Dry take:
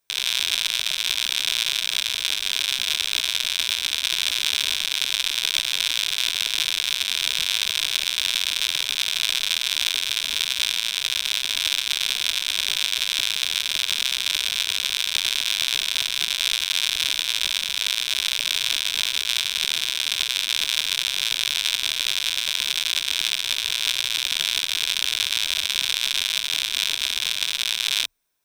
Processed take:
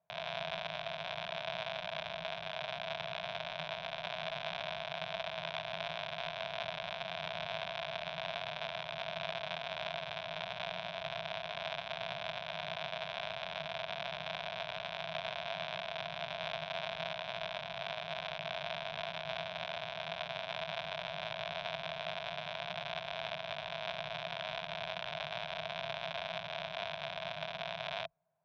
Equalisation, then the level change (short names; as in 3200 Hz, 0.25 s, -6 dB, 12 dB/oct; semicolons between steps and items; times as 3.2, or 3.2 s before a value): double band-pass 320 Hz, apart 2.1 oct; air absorption 240 m; +14.5 dB